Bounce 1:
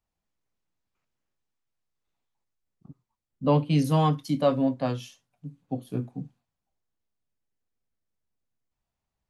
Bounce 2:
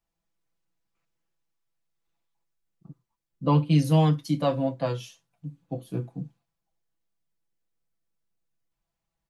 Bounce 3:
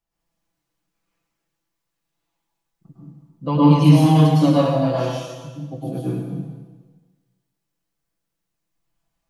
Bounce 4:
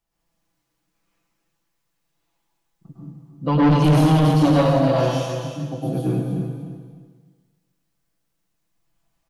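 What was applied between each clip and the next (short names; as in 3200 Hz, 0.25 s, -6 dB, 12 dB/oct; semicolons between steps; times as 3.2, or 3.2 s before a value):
comb 6 ms, depth 67%; gain -1 dB
plate-style reverb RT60 1.3 s, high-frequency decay 0.95×, pre-delay 95 ms, DRR -8 dB; gain -1 dB
soft clip -15 dBFS, distortion -9 dB; feedback echo 0.303 s, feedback 24%, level -9.5 dB; gain +3.5 dB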